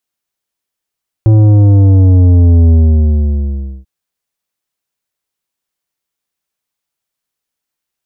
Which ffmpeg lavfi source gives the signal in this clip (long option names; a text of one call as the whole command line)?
ffmpeg -f lavfi -i "aevalsrc='0.596*clip((2.59-t)/1.14,0,1)*tanh(3.16*sin(2*PI*110*2.59/log(65/110)*(exp(log(65/110)*t/2.59)-1)))/tanh(3.16)':duration=2.59:sample_rate=44100" out.wav